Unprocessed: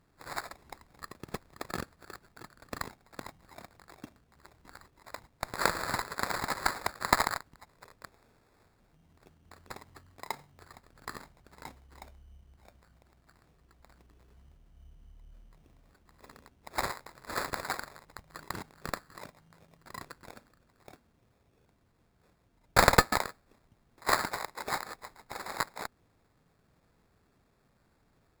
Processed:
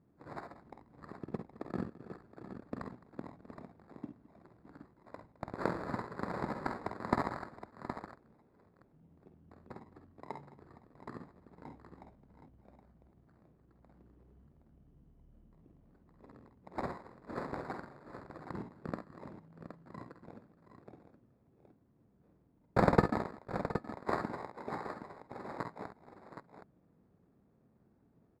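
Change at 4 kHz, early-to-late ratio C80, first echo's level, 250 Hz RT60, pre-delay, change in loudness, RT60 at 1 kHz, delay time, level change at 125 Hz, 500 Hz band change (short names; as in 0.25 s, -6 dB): -20.0 dB, none, -8.5 dB, none, none, -7.0 dB, none, 49 ms, +1.0 dB, -1.0 dB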